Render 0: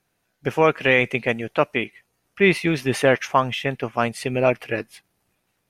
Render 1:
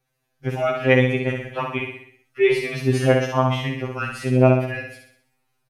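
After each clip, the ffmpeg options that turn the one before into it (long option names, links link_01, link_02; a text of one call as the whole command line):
ffmpeg -i in.wav -af "lowshelf=frequency=210:gain=4.5,aecho=1:1:63|126|189|252|315|378|441:0.596|0.304|0.155|0.079|0.0403|0.0206|0.0105,afftfilt=real='re*2.45*eq(mod(b,6),0)':imag='im*2.45*eq(mod(b,6),0)':win_size=2048:overlap=0.75,volume=-2.5dB" out.wav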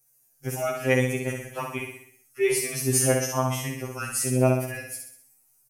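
ffmpeg -i in.wav -af "aexciter=amount=12.3:drive=6.2:freq=5600,volume=-6dB" out.wav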